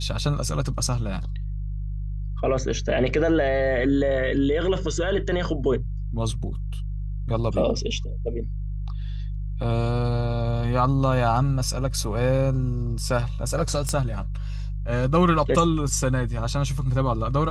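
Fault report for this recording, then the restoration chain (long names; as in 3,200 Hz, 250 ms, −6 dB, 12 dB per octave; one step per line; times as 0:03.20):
mains hum 50 Hz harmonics 3 −29 dBFS
0:13.89: click −13 dBFS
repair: click removal
hum removal 50 Hz, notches 3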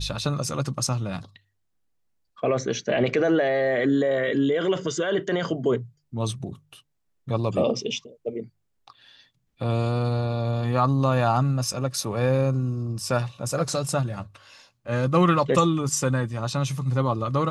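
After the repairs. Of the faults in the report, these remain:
none of them is left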